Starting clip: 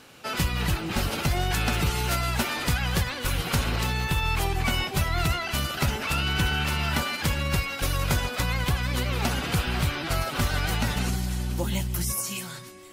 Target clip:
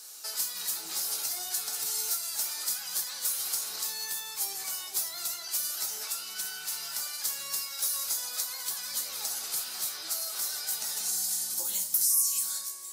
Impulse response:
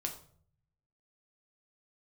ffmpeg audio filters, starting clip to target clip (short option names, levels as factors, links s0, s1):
-filter_complex "[0:a]highpass=620,acompressor=threshold=0.0178:ratio=6,aexciter=amount=5.3:drive=9.3:freq=4200[s0];[1:a]atrim=start_sample=2205,asetrate=52920,aresample=44100[s1];[s0][s1]afir=irnorm=-1:irlink=0,volume=0.447"